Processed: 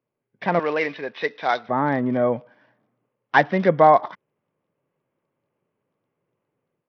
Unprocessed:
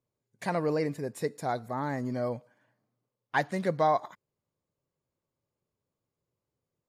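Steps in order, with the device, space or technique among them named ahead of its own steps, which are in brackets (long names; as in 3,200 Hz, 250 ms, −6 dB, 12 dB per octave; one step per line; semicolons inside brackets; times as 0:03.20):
0:00.59–0:01.69: meter weighting curve ITU-R 468
high-pass filter 90 Hz 12 dB per octave
Bluetooth headset (high-pass filter 150 Hz 12 dB per octave; automatic gain control gain up to 6.5 dB; downsampling to 8,000 Hz; level +5 dB; SBC 64 kbit/s 44,100 Hz)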